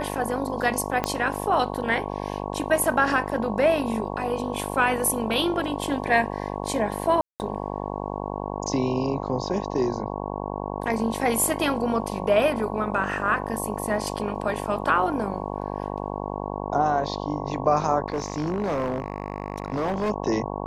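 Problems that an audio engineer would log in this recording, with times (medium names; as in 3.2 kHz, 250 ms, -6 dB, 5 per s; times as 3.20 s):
buzz 50 Hz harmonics 22 -31 dBFS
1.04 s: pop -10 dBFS
7.21–7.40 s: dropout 189 ms
18.06–20.11 s: clipped -21.5 dBFS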